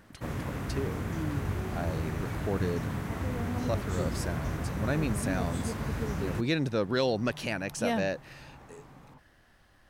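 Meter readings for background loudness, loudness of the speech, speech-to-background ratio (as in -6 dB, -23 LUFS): -34.0 LUFS, -33.5 LUFS, 0.5 dB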